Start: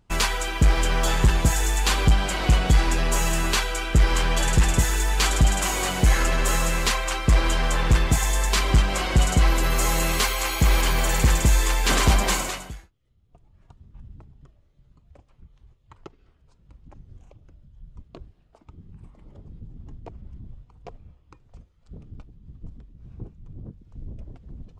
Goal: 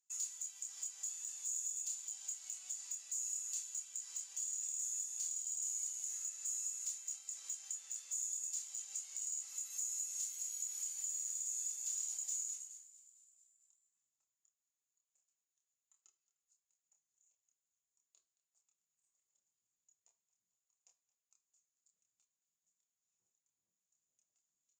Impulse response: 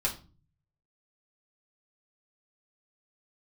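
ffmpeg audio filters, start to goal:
-filter_complex "[0:a]bandpass=f=6900:t=q:w=18:csg=0,aemphasis=mode=production:type=bsi,asplit=2[s0][s1];[1:a]atrim=start_sample=2205[s2];[s1][s2]afir=irnorm=-1:irlink=0,volume=0.447[s3];[s0][s3]amix=inputs=2:normalize=0,acompressor=threshold=0.0112:ratio=2.5,asoftclip=type=tanh:threshold=0.0447,asplit=2[s4][s5];[s5]adelay=27,volume=0.631[s6];[s4][s6]amix=inputs=2:normalize=0,asplit=7[s7][s8][s9][s10][s11][s12][s13];[s8]adelay=222,afreqshift=62,volume=0.126[s14];[s9]adelay=444,afreqshift=124,volume=0.0794[s15];[s10]adelay=666,afreqshift=186,volume=0.0501[s16];[s11]adelay=888,afreqshift=248,volume=0.0316[s17];[s12]adelay=1110,afreqshift=310,volume=0.0197[s18];[s13]adelay=1332,afreqshift=372,volume=0.0124[s19];[s7][s14][s15][s16][s17][s18][s19]amix=inputs=7:normalize=0,volume=0.596"

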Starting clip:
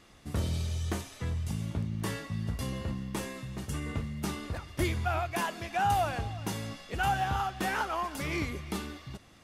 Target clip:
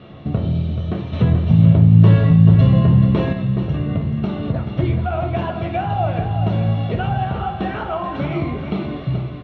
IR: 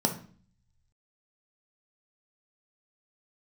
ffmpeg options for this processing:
-filter_complex "[0:a]acompressor=threshold=0.00891:ratio=3,lowshelf=f=370:g=-5,aecho=1:1:432|864|1296|1728|2160:0.355|0.149|0.0626|0.0263|0.011[s0];[1:a]atrim=start_sample=2205,asetrate=31752,aresample=44100[s1];[s0][s1]afir=irnorm=-1:irlink=0,asettb=1/sr,asplit=3[s2][s3][s4];[s2]atrim=end=1.134[s5];[s3]atrim=start=1.13:end=3.33,asetpts=PTS-STARTPTS,afade=t=in:d=0.004:c=qsin,afade=t=out:st=2.196:d=0.004:c=qsin,acontrast=36[s6];[s4]atrim=start=3.326[s7];[s5][s6]acrossfade=d=0.004:c1=hsin:c2=qsin[s8];[s8][s7]acrossfade=d=0.004:c1=qsin:c2=hsin,lowpass=f=2900:w=0.5412,lowpass=f=2900:w=1.3066,lowshelf=f=180:g=4,volume=1.78"

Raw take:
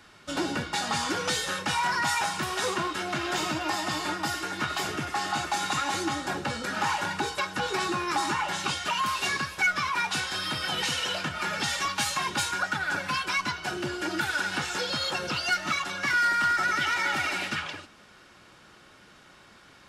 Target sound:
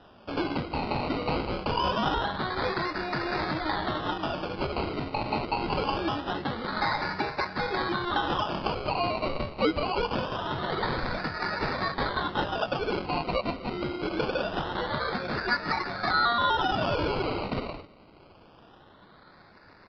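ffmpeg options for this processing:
-af "acrusher=samples=20:mix=1:aa=0.000001:lfo=1:lforange=12:lforate=0.24,aresample=11025,aresample=44100"

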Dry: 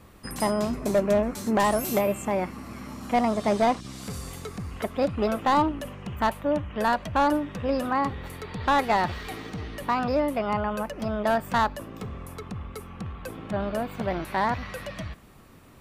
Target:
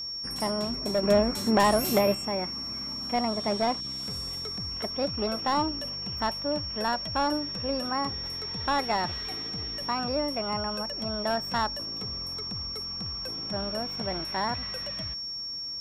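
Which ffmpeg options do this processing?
-filter_complex "[0:a]asettb=1/sr,asplit=3[s0][s1][s2];[s0]atrim=end=1.034[s3];[s1]atrim=start=1.03:end=2.15,asetpts=PTS-STARTPTS,afade=t=in:d=0.004:c=qsin,afade=t=out:st=1.116:d=0.004:c=qsin,acontrast=51[s4];[s2]atrim=start=2.146[s5];[s3][s4]acrossfade=d=0.004:c1=hsin:c2=qsin[s6];[s6][s5]acrossfade=d=0.004:c1=qsin:c2=hsin,aeval=exprs='val(0)+0.0398*sin(2*PI*5500*n/s)':c=same,volume=0.562"

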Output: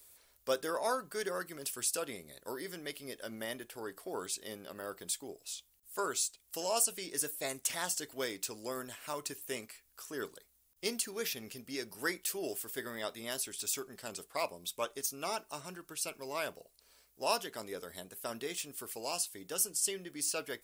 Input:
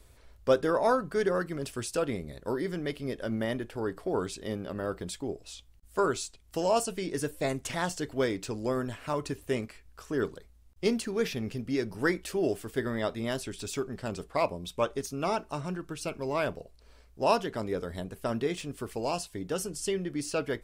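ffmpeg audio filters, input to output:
-af "aemphasis=mode=production:type=riaa,volume=0.447"

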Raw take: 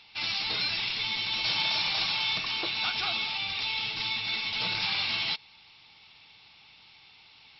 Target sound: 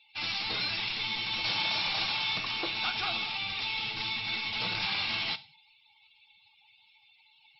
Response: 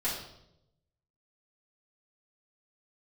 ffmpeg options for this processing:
-filter_complex "[0:a]asplit=2[s0][s1];[1:a]atrim=start_sample=2205,afade=t=out:st=0.34:d=0.01,atrim=end_sample=15435,asetrate=48510,aresample=44100[s2];[s1][s2]afir=irnorm=-1:irlink=0,volume=0.141[s3];[s0][s3]amix=inputs=2:normalize=0,afftdn=nr=25:nf=-51,highshelf=f=3700:g=-7"

